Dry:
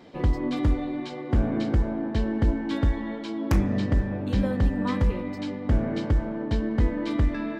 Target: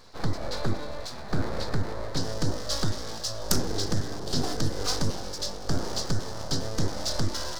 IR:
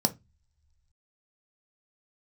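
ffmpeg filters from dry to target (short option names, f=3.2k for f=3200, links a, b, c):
-af "equalizer=f=1.4k:w=4.4:g=12.5,aeval=exprs='abs(val(0))':c=same,asetnsamples=n=441:p=0,asendcmd='2.17 highshelf g 14',highshelf=f=3.5k:t=q:w=3:g=6.5,volume=-2dB"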